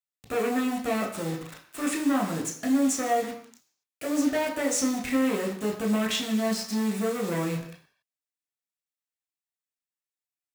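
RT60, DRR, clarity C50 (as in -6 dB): no single decay rate, -0.5 dB, 8.0 dB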